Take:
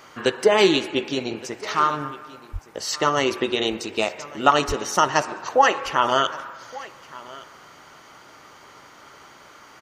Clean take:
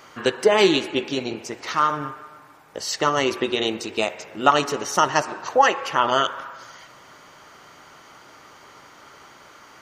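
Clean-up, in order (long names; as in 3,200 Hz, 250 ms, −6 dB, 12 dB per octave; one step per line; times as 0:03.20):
high-pass at the plosives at 0:02.52/0:04.67
echo removal 1,168 ms −20 dB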